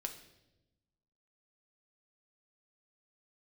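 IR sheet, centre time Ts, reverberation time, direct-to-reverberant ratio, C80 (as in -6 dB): 14 ms, 0.95 s, 4.0 dB, 12.5 dB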